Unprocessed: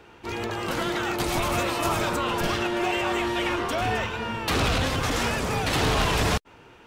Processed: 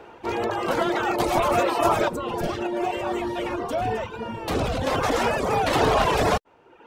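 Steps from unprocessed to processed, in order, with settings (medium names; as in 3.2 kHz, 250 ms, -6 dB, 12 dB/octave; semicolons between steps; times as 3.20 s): 2.08–4.87 s: FFT filter 170 Hz 0 dB, 1.3 kHz -9 dB, 9 kHz -3 dB; reverb removal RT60 0.84 s; peaking EQ 630 Hz +12 dB 2.3 oct; trim -2 dB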